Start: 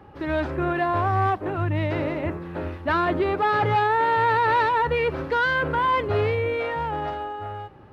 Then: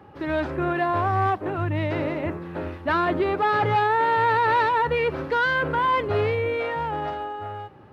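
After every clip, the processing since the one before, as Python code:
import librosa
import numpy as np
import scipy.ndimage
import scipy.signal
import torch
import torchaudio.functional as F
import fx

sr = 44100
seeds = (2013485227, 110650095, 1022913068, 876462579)

y = scipy.signal.sosfilt(scipy.signal.butter(2, 84.0, 'highpass', fs=sr, output='sos'), x)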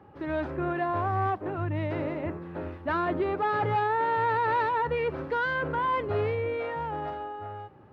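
y = fx.high_shelf(x, sr, hz=2800.0, db=-9.0)
y = F.gain(torch.from_numpy(y), -4.5).numpy()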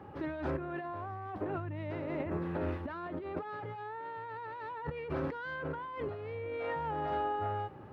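y = fx.over_compress(x, sr, threshold_db=-36.0, ratio=-1.0)
y = F.gain(torch.from_numpy(y), -2.5).numpy()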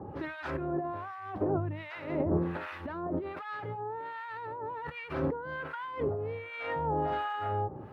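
y = fx.harmonic_tremolo(x, sr, hz=1.3, depth_pct=100, crossover_hz=1000.0)
y = F.gain(torch.from_numpy(y), 8.5).numpy()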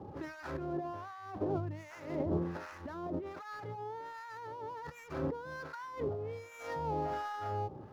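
y = scipy.ndimage.median_filter(x, 15, mode='constant')
y = F.gain(torch.from_numpy(y), -4.5).numpy()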